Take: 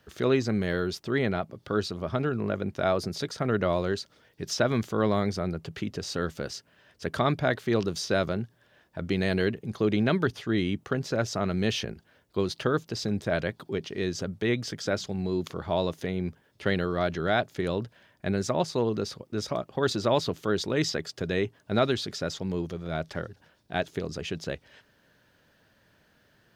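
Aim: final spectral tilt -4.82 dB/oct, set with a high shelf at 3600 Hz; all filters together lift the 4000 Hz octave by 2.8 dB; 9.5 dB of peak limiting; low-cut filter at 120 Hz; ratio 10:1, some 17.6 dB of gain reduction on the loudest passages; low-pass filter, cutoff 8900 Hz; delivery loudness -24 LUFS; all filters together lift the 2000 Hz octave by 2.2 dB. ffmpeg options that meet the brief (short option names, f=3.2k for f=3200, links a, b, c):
-af "highpass=120,lowpass=8.9k,equalizer=f=2k:t=o:g=3.5,highshelf=f=3.6k:g=-9,equalizer=f=4k:t=o:g=8.5,acompressor=threshold=-37dB:ratio=10,volume=19.5dB,alimiter=limit=-10dB:level=0:latency=1"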